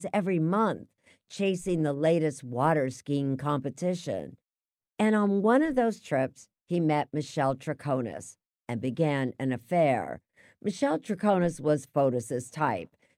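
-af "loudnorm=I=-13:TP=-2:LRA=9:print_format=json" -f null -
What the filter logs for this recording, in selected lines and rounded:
"input_i" : "-28.4",
"input_tp" : "-11.2",
"input_lra" : "2.2",
"input_thresh" : "-38.9",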